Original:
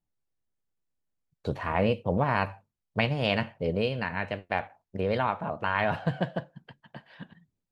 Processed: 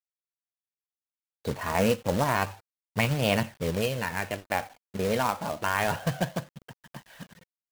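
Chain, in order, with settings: companded quantiser 4-bit; phaser 0.3 Hz, delay 4.8 ms, feedback 26%

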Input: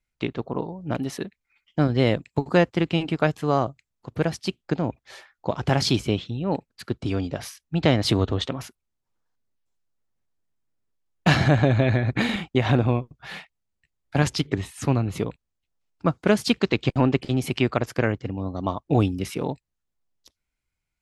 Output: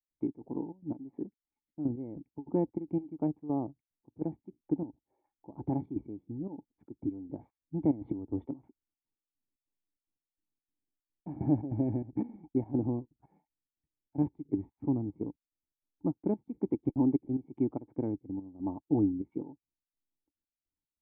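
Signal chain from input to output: step gate ".xx.xxx.x." 146 bpm -12 dB; vocal tract filter u

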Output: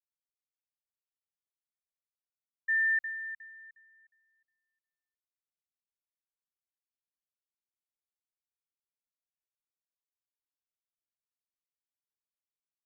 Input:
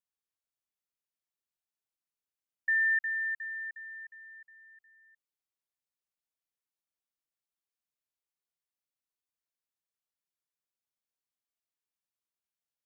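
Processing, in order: three-band expander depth 100%; gain -6.5 dB

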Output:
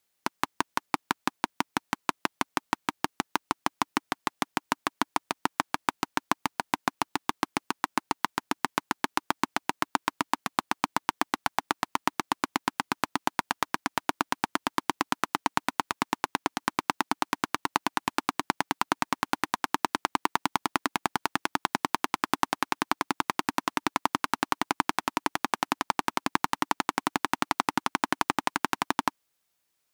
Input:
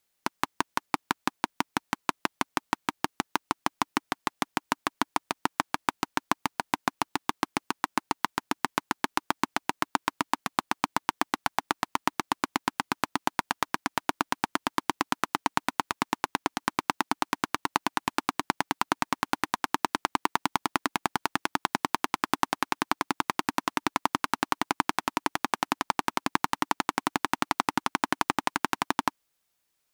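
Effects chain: HPF 55 Hz 6 dB/oct

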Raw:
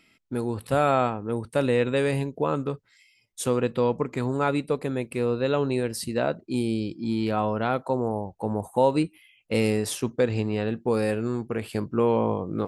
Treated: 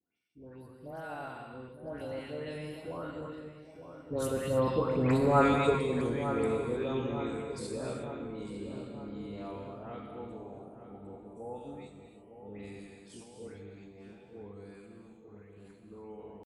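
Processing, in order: octaver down 2 oct, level -4 dB; Doppler pass-by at 4.04, 29 m/s, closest 9.1 m; HPF 110 Hz 12 dB/oct; dispersion highs, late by 0.145 s, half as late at 1600 Hz; tempo 0.77×; on a send: darkening echo 0.907 s, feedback 59%, low-pass 1600 Hz, level -9.5 dB; on the sum: non-linear reverb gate 0.34 s flat, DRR 3 dB

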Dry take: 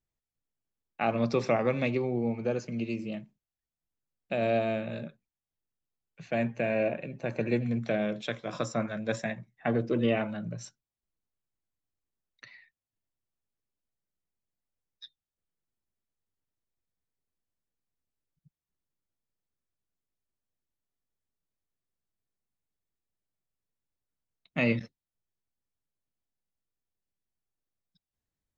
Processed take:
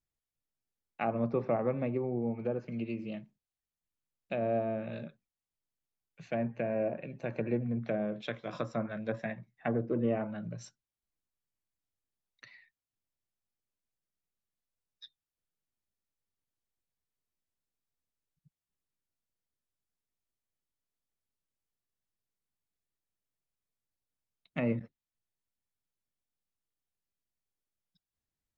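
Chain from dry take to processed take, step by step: treble ducked by the level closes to 1200 Hz, closed at -25.5 dBFS; gain -3.5 dB

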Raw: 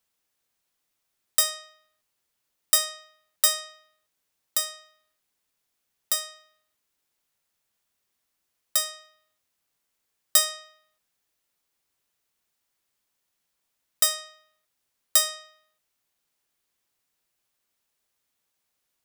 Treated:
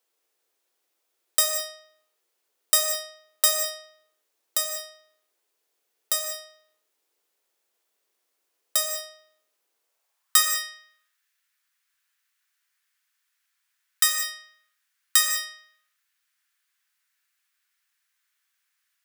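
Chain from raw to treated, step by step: high-pass sweep 400 Hz -> 1600 Hz, 9.74–10.47; non-linear reverb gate 0.23 s flat, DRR 4 dB

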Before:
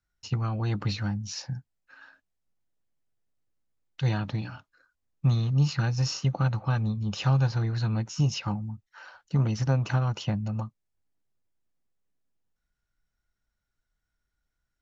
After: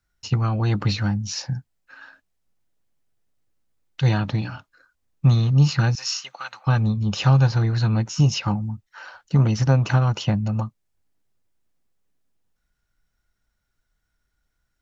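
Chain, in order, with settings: 5.95–6.67 HPF 1500 Hz 12 dB/oct; gain +7 dB

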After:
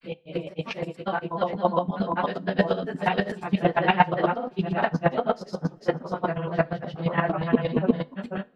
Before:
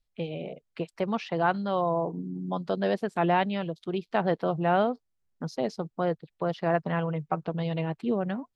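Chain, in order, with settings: phase scrambler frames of 0.1 s; dynamic EQ 2000 Hz, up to +6 dB, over -42 dBFS, Q 0.91; grains, spray 0.707 s; chopper 8.5 Hz, depth 65%, duty 20%; on a send: reverb, pre-delay 3 ms, DRR 16 dB; on the sum: gain +8 dB

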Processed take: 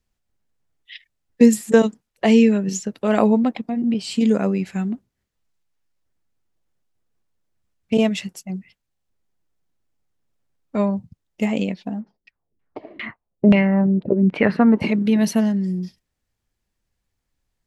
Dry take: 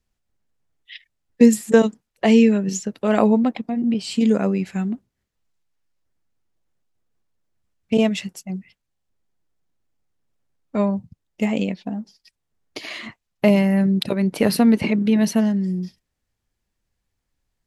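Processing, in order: 12–14.8 LFO low-pass saw down 4 Hz -> 0.75 Hz 260–2700 Hz

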